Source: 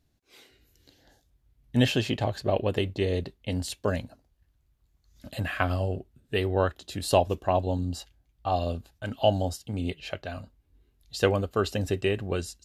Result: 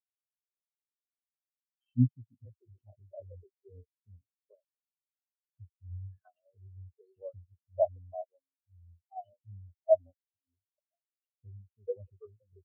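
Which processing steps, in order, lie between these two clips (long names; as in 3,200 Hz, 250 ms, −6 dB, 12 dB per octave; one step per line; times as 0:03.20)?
three-band delay without the direct sound highs, lows, mids 210/650 ms, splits 340/2,100 Hz
every bin expanded away from the loudest bin 4 to 1
level −2.5 dB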